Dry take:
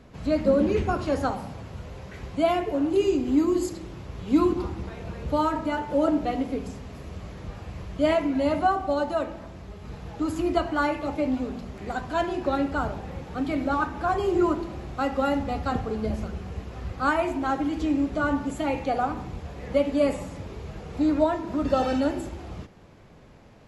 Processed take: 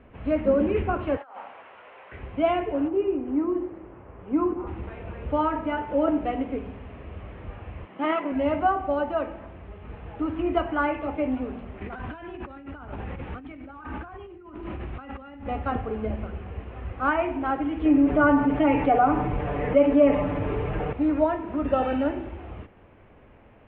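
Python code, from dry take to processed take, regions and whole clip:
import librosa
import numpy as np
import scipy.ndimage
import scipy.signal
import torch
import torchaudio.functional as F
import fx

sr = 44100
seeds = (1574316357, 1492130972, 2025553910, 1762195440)

y = fx.chain(x, sr, fx.highpass(hz=850.0, slope=12),
    fx.high_shelf(hz=3300.0, db=-7.0),
    fx.over_compress(threshold_db=-42.0, ratio=-1.0), at=(1.17, 2.12))
y = fx.chain(y, sr, fx.lowpass(hz=1400.0, slope=12),
    fx.low_shelf(hz=190.0, db=-10.0), at=(2.88, 4.67))
y = fx.chain(y, sr, fx.lower_of_two(delay_ms=0.99),
    fx.highpass(hz=180.0, slope=24),
    fx.high_shelf(hz=7500.0, db=-9.5), at=(7.85, 8.32))
y = fx.chain(y, sr, fx.peak_eq(hz=610.0, db=-6.5, octaves=1.4),
    fx.over_compress(threshold_db=-38.0, ratio=-1.0), at=(11.81, 15.46))
y = fx.chain(y, sr, fx.high_shelf(hz=3500.0, db=-10.5),
    fx.comb(ms=6.8, depth=0.75),
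    fx.env_flatten(amount_pct=50), at=(17.85, 20.93))
y = scipy.signal.sosfilt(scipy.signal.butter(8, 3000.0, 'lowpass', fs=sr, output='sos'), y)
y = fx.peak_eq(y, sr, hz=160.0, db=-9.0, octaves=0.53)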